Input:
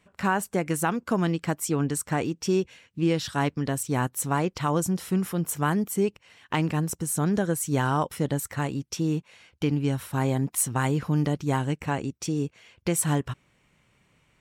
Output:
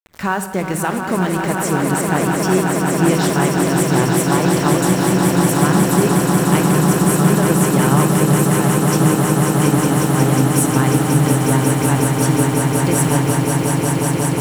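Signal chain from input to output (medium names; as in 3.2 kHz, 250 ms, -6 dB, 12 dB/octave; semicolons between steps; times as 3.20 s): jump at every zero crossing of -38.5 dBFS; high-pass 54 Hz 24 dB/octave; small samples zeroed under -37 dBFS; echo with a slow build-up 181 ms, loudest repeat 8, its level -6 dB; on a send at -10 dB: reverberation RT60 0.90 s, pre-delay 3 ms; on the sum: trim +4 dB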